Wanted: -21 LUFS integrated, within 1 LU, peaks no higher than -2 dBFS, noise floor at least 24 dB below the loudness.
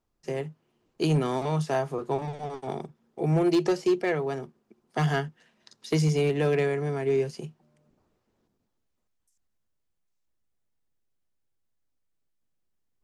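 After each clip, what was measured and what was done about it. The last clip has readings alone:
clipped samples 0.5%; clipping level -17.5 dBFS; loudness -27.5 LUFS; peak level -17.5 dBFS; loudness target -21.0 LUFS
-> clip repair -17.5 dBFS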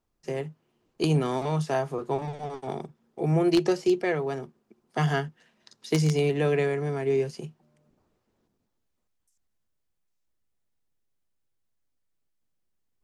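clipped samples 0.0%; loudness -27.0 LUFS; peak level -8.5 dBFS; loudness target -21.0 LUFS
-> trim +6 dB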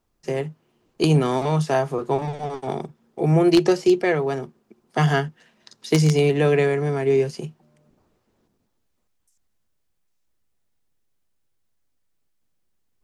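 loudness -21.0 LUFS; peak level -2.5 dBFS; noise floor -71 dBFS

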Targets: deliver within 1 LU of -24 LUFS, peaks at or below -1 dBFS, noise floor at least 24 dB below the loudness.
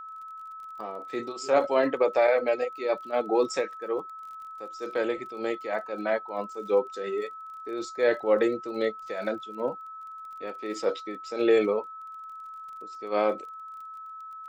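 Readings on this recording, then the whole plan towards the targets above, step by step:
tick rate 29 per s; steady tone 1.3 kHz; tone level -39 dBFS; loudness -28.0 LUFS; peak level -11.0 dBFS; loudness target -24.0 LUFS
-> de-click; band-stop 1.3 kHz, Q 30; trim +4 dB

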